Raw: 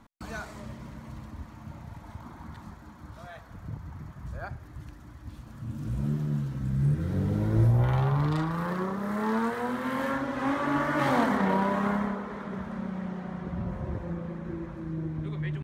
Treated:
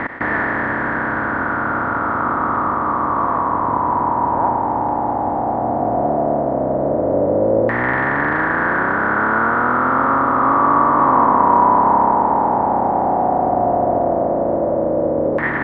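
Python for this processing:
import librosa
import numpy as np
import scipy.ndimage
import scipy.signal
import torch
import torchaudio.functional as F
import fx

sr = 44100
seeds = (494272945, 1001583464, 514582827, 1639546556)

y = fx.bin_compress(x, sr, power=0.2)
y = fx.filter_lfo_lowpass(y, sr, shape='saw_down', hz=0.13, low_hz=540.0, high_hz=1900.0, q=6.7)
y = fx.low_shelf_res(y, sr, hz=210.0, db=-8.0, q=1.5)
y = y * librosa.db_to_amplitude(-1.5)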